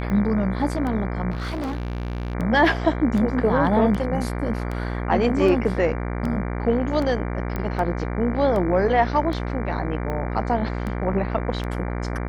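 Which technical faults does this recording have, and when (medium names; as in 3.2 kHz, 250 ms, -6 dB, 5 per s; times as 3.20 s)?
buzz 60 Hz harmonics 39 -27 dBFS
tick 78 rpm -18 dBFS
1.30–2.35 s: clipped -24 dBFS
7.56 s: pop -15 dBFS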